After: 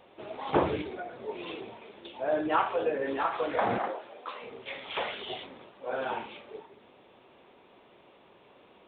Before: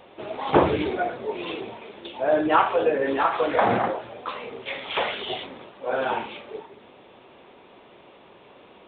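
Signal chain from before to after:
0:00.81–0:01.28: downward compressor, threshold −28 dBFS, peak gain reduction 7.5 dB
0:03.78–0:04.42: high-pass filter 300 Hz 12 dB per octave
level −7.5 dB

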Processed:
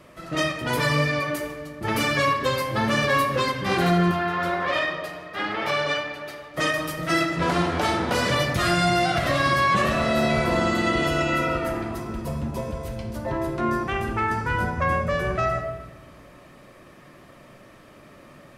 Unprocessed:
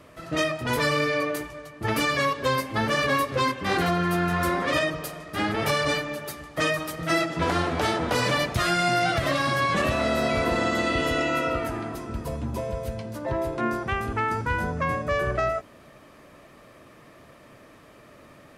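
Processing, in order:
0:04.11–0:06.54: three-way crossover with the lows and the highs turned down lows −13 dB, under 390 Hz, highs −15 dB, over 4,700 Hz
convolution reverb RT60 1.2 s, pre-delay 5 ms, DRR 3.5 dB

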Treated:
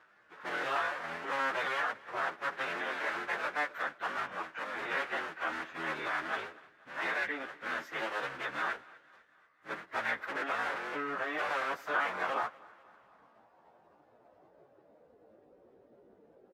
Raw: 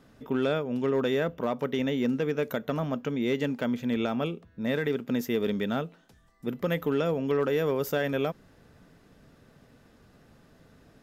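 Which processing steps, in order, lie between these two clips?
sub-harmonics by changed cycles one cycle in 3, inverted
band-pass filter sweep 1,600 Hz → 460 Hz, 0:07.72–0:10.41
time stretch by phase vocoder 1.5×
repeating echo 245 ms, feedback 54%, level −23 dB
level +6.5 dB

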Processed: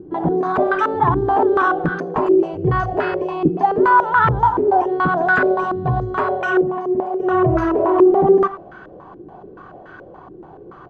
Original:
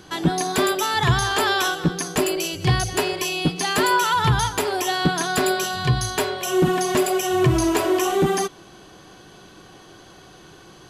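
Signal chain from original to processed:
0:00.85–0:01.79: parametric band 300 Hz +10 dB 0.72 octaves
brickwall limiter −14 dBFS, peak gain reduction 8 dB
0:06.61–0:07.20: tuned comb filter 72 Hz, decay 0.51 s, harmonics all, mix 80%
far-end echo of a speakerphone 90 ms, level −11 dB
low-pass on a step sequencer 7 Hz 360–1,500 Hz
level +2.5 dB

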